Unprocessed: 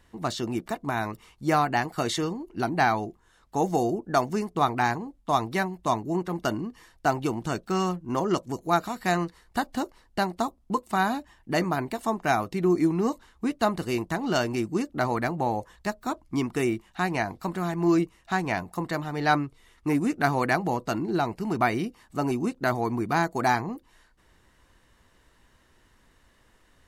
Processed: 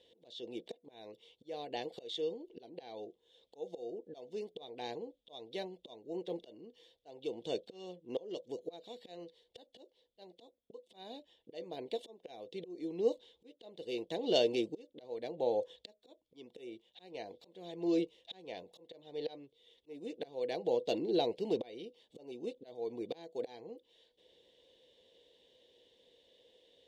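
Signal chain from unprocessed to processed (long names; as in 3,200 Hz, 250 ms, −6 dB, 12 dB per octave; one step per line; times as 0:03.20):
volume swells 743 ms
pair of resonant band-passes 1,300 Hz, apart 2.8 octaves
level +9.5 dB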